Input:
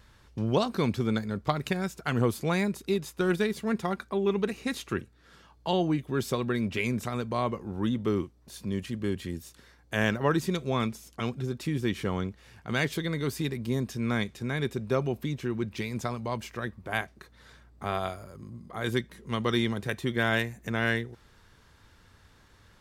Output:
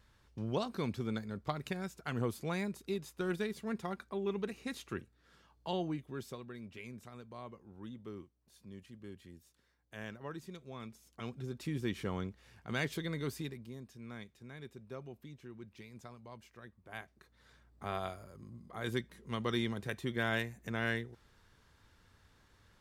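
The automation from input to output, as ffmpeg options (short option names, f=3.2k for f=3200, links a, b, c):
-af "volume=13.5dB,afade=t=out:st=5.76:d=0.7:silence=0.334965,afade=t=in:st=10.8:d=0.91:silence=0.266073,afade=t=out:st=13.26:d=0.46:silence=0.266073,afade=t=in:st=16.78:d=1.17:silence=0.266073"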